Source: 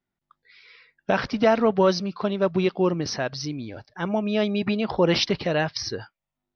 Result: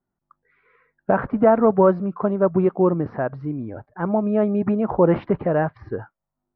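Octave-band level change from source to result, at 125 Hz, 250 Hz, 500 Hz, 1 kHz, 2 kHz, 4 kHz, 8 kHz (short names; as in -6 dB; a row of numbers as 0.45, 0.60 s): +4.0 dB, +4.0 dB, +4.0 dB, +3.5 dB, -4.0 dB, under -25 dB, n/a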